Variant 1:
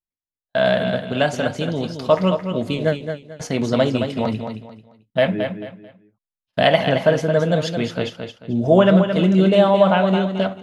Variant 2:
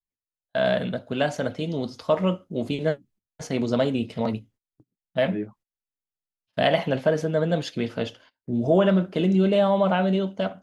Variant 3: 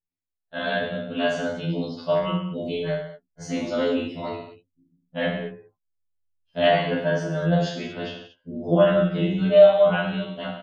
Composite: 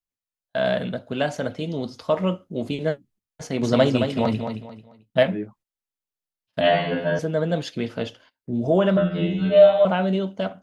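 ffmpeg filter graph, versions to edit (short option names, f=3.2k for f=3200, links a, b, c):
-filter_complex "[2:a]asplit=2[a][b];[1:a]asplit=4[c][d][e][f];[c]atrim=end=3.632[g];[0:a]atrim=start=3.628:end=5.232[h];[d]atrim=start=5.228:end=6.612[i];[a]atrim=start=6.608:end=7.192[j];[e]atrim=start=7.188:end=8.972[k];[b]atrim=start=8.968:end=9.852[l];[f]atrim=start=9.848[m];[g][h]acrossfade=d=0.004:c1=hsin:c2=hsin[n];[n][i]acrossfade=d=0.004:c1=hsin:c2=hsin[o];[o][j]acrossfade=d=0.004:c1=hsin:c2=hsin[p];[p][k]acrossfade=d=0.004:c1=hsin:c2=hsin[q];[q][l]acrossfade=d=0.004:c1=hsin:c2=hsin[r];[r][m]acrossfade=d=0.004:c1=hsin:c2=hsin"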